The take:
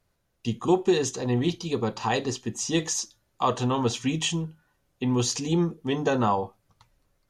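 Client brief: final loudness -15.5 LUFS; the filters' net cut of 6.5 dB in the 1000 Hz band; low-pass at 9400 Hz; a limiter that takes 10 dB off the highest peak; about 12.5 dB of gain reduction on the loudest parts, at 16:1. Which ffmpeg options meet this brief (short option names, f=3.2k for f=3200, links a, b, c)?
-af "lowpass=9.4k,equalizer=f=1k:t=o:g=-8.5,acompressor=threshold=-29dB:ratio=16,volume=23.5dB,alimiter=limit=-6dB:level=0:latency=1"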